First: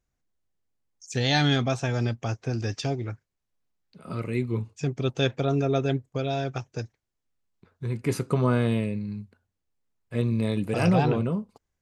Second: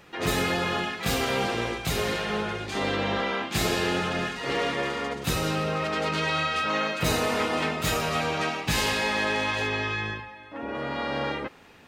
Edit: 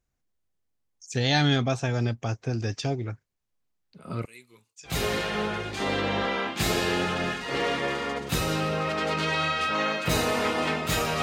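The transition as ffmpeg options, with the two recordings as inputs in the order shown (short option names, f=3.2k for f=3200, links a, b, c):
-filter_complex "[0:a]asettb=1/sr,asplit=3[a][b][c];[a]atrim=end=4.254[d];[b]atrim=start=4.25:end=4.96,asetpts=PTS-STARTPTS,afade=t=in:d=0.004:c=qsin,afade=t=out:st=0.706:d=0.004:c=qsin,aderivative[e];[c]atrim=start=4.956[f];[d][e]acrossfade=d=0.004:c1=hsin:c2=qsin[g];[g][f]acrossfade=d=0.004:c1=qsin:c2=hsin,apad=whole_dur=11.22,atrim=end=11.22,atrim=end=4.96,asetpts=PTS-STARTPTS[h];[1:a]atrim=start=1.79:end=8.17,asetpts=PTS-STARTPTS[i];[h][i]acrossfade=d=0.12:c1=tri:c2=tri"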